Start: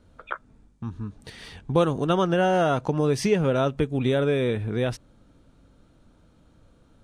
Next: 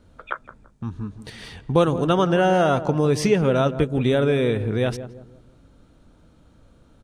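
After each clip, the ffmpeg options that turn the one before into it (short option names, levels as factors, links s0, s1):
-filter_complex "[0:a]asplit=2[s0][s1];[s1]adelay=168,lowpass=f=840:p=1,volume=0.282,asplit=2[s2][s3];[s3]adelay=168,lowpass=f=840:p=1,volume=0.41,asplit=2[s4][s5];[s5]adelay=168,lowpass=f=840:p=1,volume=0.41,asplit=2[s6][s7];[s7]adelay=168,lowpass=f=840:p=1,volume=0.41[s8];[s0][s2][s4][s6][s8]amix=inputs=5:normalize=0,volume=1.41"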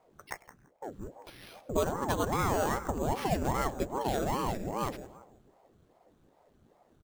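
-filter_complex "[0:a]acrusher=samples=6:mix=1:aa=0.000001,asplit=4[s0][s1][s2][s3];[s1]adelay=98,afreqshift=90,volume=0.0708[s4];[s2]adelay=196,afreqshift=180,volume=0.0367[s5];[s3]adelay=294,afreqshift=270,volume=0.0191[s6];[s0][s4][s5][s6]amix=inputs=4:normalize=0,aeval=exprs='val(0)*sin(2*PI*400*n/s+400*0.8/2.5*sin(2*PI*2.5*n/s))':c=same,volume=0.376"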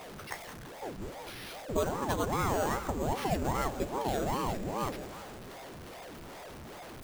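-af "aeval=exprs='val(0)+0.5*0.0119*sgn(val(0))':c=same,volume=0.794"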